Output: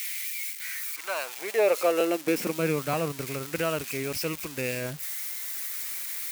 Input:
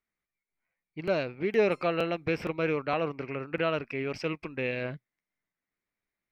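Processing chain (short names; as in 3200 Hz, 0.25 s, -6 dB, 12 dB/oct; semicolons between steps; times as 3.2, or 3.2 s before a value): switching spikes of -24.5 dBFS; high-pass sweep 2300 Hz -> 62 Hz, 0.41–3.62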